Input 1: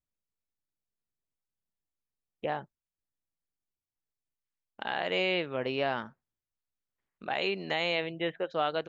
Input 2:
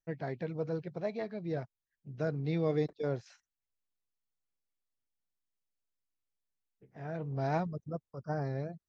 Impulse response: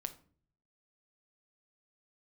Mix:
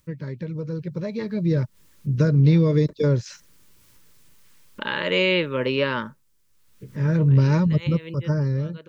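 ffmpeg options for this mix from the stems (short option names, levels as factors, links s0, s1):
-filter_complex "[0:a]equalizer=f=160:w=1.5:g=5,acompressor=mode=upward:threshold=0.00891:ratio=2.5,volume=0.668[s0];[1:a]acompressor=threshold=0.0224:ratio=5,bass=f=250:g=10,treble=f=4000:g=8,volume=1.26,asplit=2[s1][s2];[s2]apad=whole_len=391671[s3];[s0][s3]sidechaincompress=threshold=0.00316:ratio=8:attack=8.3:release=113[s4];[s4][s1]amix=inputs=2:normalize=0,dynaudnorm=f=370:g=7:m=3.98,asuperstop=centerf=730:order=12:qfactor=3.2"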